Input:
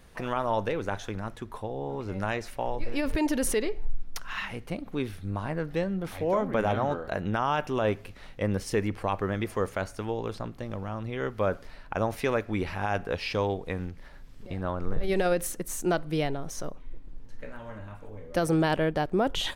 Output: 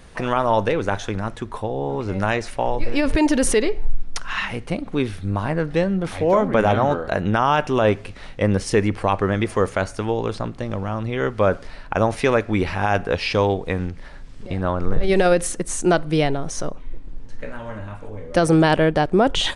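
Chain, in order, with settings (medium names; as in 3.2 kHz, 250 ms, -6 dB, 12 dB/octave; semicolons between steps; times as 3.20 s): resampled via 22.05 kHz; trim +9 dB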